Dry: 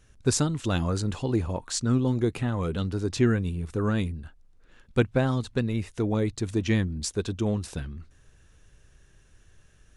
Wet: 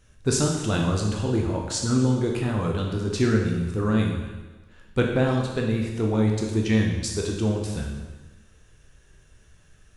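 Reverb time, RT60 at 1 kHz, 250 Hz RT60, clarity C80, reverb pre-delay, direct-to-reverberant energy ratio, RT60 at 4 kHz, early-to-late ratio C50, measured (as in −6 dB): 1.2 s, 1.2 s, 1.2 s, 5.5 dB, 14 ms, −0.5 dB, 1.2 s, 3.0 dB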